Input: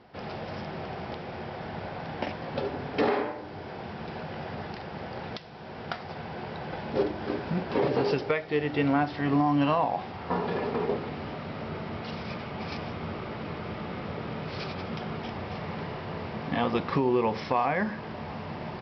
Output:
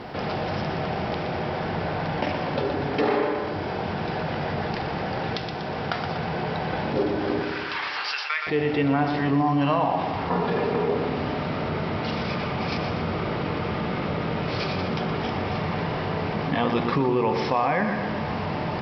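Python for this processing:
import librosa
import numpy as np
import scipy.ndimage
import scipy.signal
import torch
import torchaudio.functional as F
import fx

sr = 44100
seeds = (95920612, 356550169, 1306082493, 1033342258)

y = fx.highpass(x, sr, hz=1200.0, slope=24, at=(7.42, 8.47))
y = fx.echo_feedback(y, sr, ms=121, feedback_pct=52, wet_db=-9.5)
y = fx.room_shoebox(y, sr, seeds[0], volume_m3=760.0, walls='furnished', distance_m=0.47)
y = fx.env_flatten(y, sr, amount_pct=50)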